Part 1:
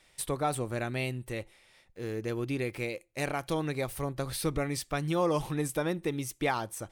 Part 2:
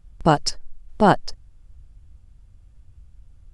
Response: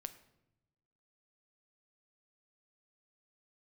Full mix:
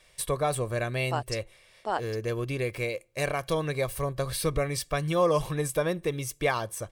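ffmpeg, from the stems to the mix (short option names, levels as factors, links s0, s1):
-filter_complex "[0:a]aecho=1:1:1.8:0.53,volume=1.26,asplit=2[s0][s1];[s1]volume=0.0708[s2];[1:a]highpass=500,adelay=850,volume=0.251[s3];[2:a]atrim=start_sample=2205[s4];[s2][s4]afir=irnorm=-1:irlink=0[s5];[s0][s3][s5]amix=inputs=3:normalize=0"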